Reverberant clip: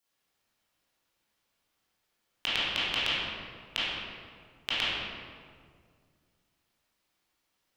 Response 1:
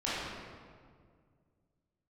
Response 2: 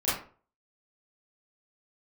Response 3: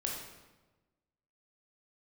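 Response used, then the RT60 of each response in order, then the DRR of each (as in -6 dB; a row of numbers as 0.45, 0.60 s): 1; 2.0, 0.40, 1.2 s; -10.5, -11.5, -1.5 dB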